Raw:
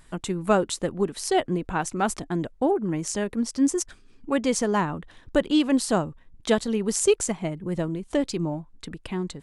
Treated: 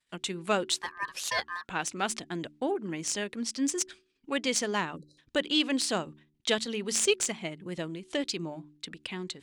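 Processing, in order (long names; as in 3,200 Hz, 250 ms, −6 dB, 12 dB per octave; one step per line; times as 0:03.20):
stylus tracing distortion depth 0.021 ms
downward expander −41 dBFS
meter weighting curve D
0:00.76–0:01.69: ring modulation 1,400 Hz
0:04.96–0:05.18: time-frequency box erased 590–3,900 Hz
hum removal 74.48 Hz, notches 5
level −7 dB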